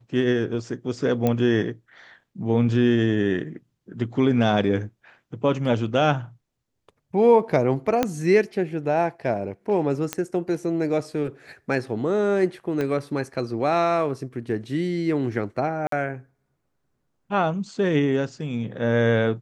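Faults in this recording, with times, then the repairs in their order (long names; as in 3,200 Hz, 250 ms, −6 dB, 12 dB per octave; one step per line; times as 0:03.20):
0:01.27: click −10 dBFS
0:08.03: click −7 dBFS
0:10.13: click −9 dBFS
0:12.81: click −15 dBFS
0:15.87–0:15.92: drop-out 53 ms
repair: click removal
repair the gap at 0:15.87, 53 ms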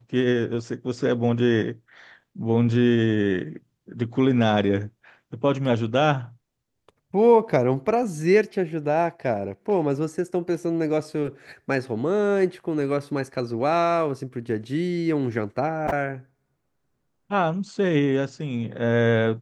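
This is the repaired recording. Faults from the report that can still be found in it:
0:08.03: click
0:12.81: click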